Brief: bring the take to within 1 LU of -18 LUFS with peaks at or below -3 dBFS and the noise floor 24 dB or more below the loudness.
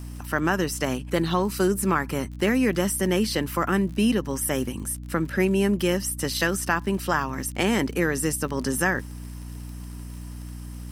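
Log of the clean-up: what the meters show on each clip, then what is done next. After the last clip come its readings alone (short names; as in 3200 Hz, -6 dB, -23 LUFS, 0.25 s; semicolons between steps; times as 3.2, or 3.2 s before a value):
ticks 46/s; hum 60 Hz; harmonics up to 300 Hz; hum level -35 dBFS; loudness -24.5 LUFS; peak -7.5 dBFS; loudness target -18.0 LUFS
-> de-click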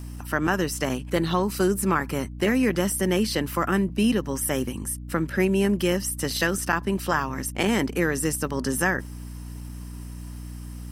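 ticks 0.27/s; hum 60 Hz; harmonics up to 300 Hz; hum level -35 dBFS
-> notches 60/120/180/240/300 Hz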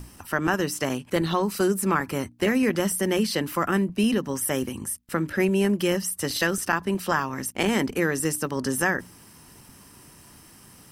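hum none; loudness -25.0 LUFS; peak -8.0 dBFS; loudness target -18.0 LUFS
-> gain +7 dB; limiter -3 dBFS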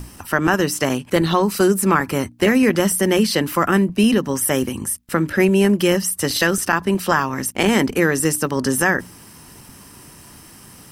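loudness -18.0 LUFS; peak -3.0 dBFS; noise floor -44 dBFS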